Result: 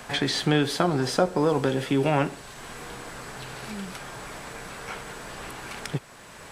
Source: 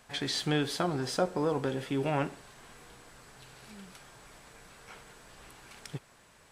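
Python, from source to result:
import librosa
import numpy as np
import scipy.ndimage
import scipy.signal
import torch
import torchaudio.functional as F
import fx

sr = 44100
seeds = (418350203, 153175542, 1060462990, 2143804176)

y = fx.band_squash(x, sr, depth_pct=40)
y = F.gain(torch.from_numpy(y), 8.0).numpy()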